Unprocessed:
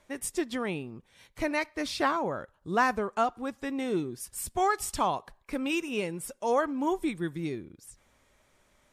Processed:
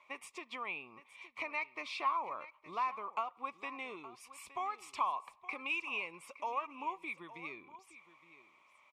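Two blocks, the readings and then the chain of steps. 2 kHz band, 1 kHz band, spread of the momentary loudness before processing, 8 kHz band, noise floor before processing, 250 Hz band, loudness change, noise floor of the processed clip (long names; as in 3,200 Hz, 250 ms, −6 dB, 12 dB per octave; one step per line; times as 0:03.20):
−6.0 dB, −6.5 dB, 10 LU, −18.5 dB, −68 dBFS, −21.5 dB, −9.0 dB, −67 dBFS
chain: downward compressor 6 to 1, threshold −34 dBFS, peak gain reduction 14 dB
pair of resonant band-passes 1,600 Hz, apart 1.1 octaves
on a send: single-tap delay 867 ms −16 dB
on the sum: level +10.5 dB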